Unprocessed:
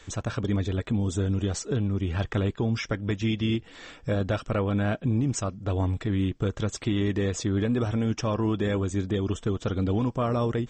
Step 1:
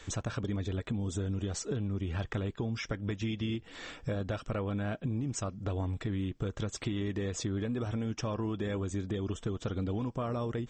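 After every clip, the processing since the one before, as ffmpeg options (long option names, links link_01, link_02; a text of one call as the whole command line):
ffmpeg -i in.wav -af "acompressor=threshold=-32dB:ratio=4" out.wav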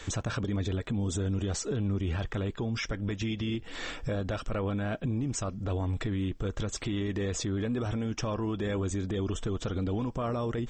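ffmpeg -i in.wav -af "asubboost=boost=2.5:cutoff=58,alimiter=level_in=6.5dB:limit=-24dB:level=0:latency=1:release=37,volume=-6.5dB,volume=6.5dB" out.wav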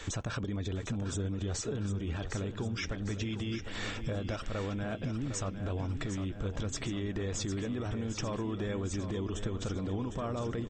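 ffmpeg -i in.wav -filter_complex "[0:a]acompressor=threshold=-32dB:ratio=6,asplit=2[link_01][link_02];[link_02]aecho=0:1:755|1510|2265|3020|3775|4530|5285:0.335|0.194|0.113|0.0654|0.0379|0.022|0.0128[link_03];[link_01][link_03]amix=inputs=2:normalize=0" out.wav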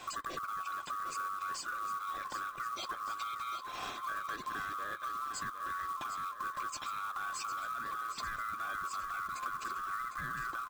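ffmpeg -i in.wav -af "afftfilt=real='real(if(lt(b,960),b+48*(1-2*mod(floor(b/48),2)),b),0)':imag='imag(if(lt(b,960),b+48*(1-2*mod(floor(b/48),2)),b),0)':win_size=2048:overlap=0.75,acrusher=bits=4:mode=log:mix=0:aa=0.000001,volume=-4.5dB" out.wav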